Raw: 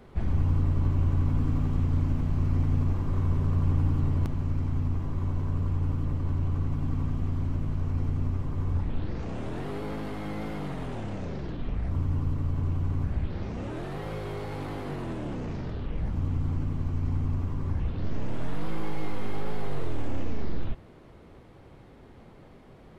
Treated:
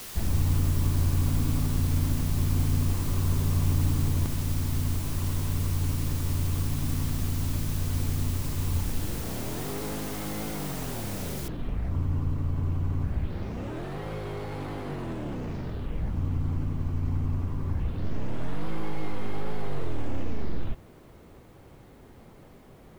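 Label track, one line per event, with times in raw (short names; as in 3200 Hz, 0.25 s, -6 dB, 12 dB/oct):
11.480000	11.480000	noise floor step -41 dB -69 dB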